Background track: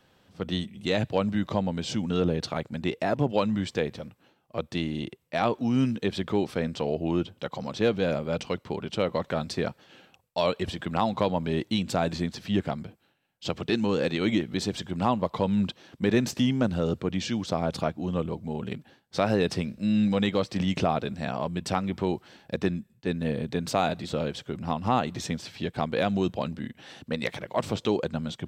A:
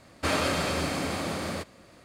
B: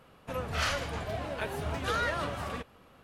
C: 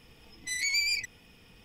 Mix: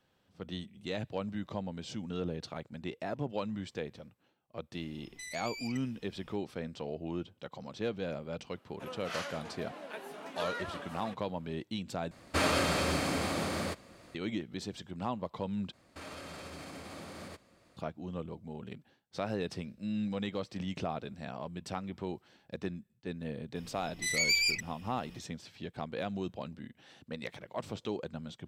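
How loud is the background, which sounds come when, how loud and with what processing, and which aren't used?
background track -11 dB
4.72 s: add C -7 dB + compression, threshold -34 dBFS
8.52 s: add B -8.5 dB + steep high-pass 200 Hz
12.11 s: replace with A -2 dB
15.73 s: replace with A -11 dB + peak limiter -26 dBFS
23.55 s: add C

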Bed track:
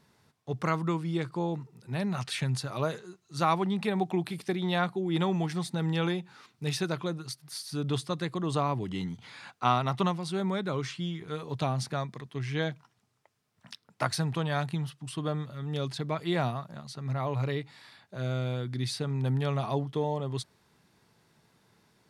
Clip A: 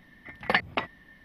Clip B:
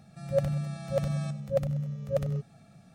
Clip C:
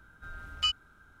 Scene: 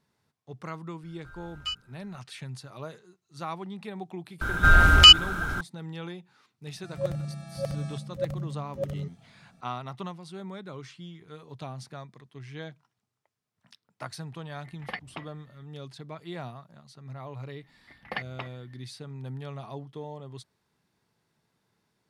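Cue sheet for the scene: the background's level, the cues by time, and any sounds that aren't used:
bed track -9.5 dB
1.03 s: add C -5 dB
4.41 s: add C -1 dB + loudness maximiser +29 dB
6.67 s: add B -3.5 dB
14.39 s: add A -12.5 dB
17.62 s: add A -10 dB

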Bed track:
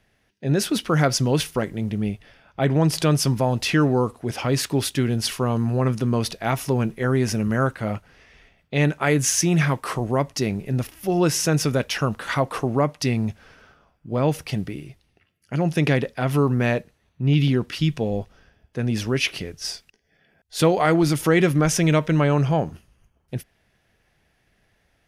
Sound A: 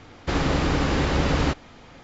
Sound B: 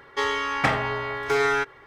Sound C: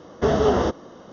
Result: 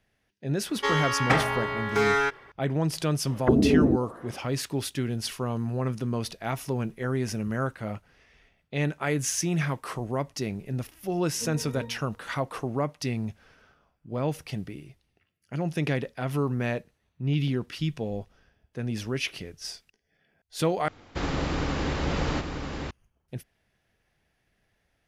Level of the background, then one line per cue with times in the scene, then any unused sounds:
bed track -7.5 dB
0.66 s: add B -1 dB
3.25 s: add C -3.5 dB + touch-sensitive low-pass 280–3100 Hz down, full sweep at -18 dBFS
11.18 s: add C -1.5 dB + pitch-class resonator A#, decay 0.52 s
20.88 s: replace with A -6 dB + delay 941 ms -6 dB

